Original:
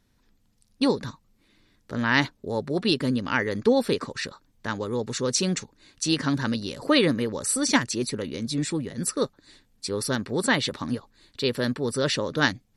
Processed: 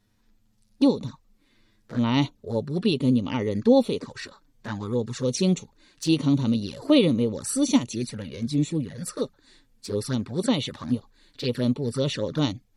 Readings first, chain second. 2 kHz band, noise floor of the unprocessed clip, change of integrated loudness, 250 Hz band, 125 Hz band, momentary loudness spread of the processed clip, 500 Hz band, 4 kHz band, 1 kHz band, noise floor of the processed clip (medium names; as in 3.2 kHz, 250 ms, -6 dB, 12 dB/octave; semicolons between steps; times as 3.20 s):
-11.5 dB, -66 dBFS, +0.5 dB, +3.5 dB, +4.0 dB, 13 LU, 0.0 dB, -3.5 dB, -4.5 dB, -65 dBFS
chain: harmonic-percussive split harmonic +9 dB; touch-sensitive flanger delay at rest 9.7 ms, full sweep at -16.5 dBFS; trim -4 dB